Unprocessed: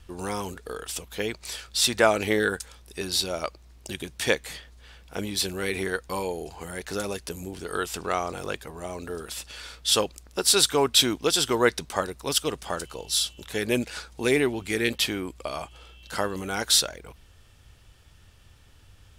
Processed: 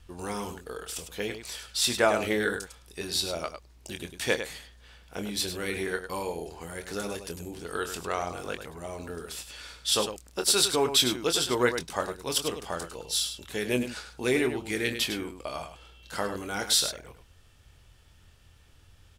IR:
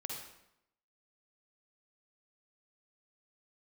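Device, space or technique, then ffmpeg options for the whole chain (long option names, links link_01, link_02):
slapback doubling: -filter_complex "[0:a]asplit=3[link_01][link_02][link_03];[link_02]adelay=24,volume=-8.5dB[link_04];[link_03]adelay=102,volume=-9dB[link_05];[link_01][link_04][link_05]amix=inputs=3:normalize=0,volume=-4dB"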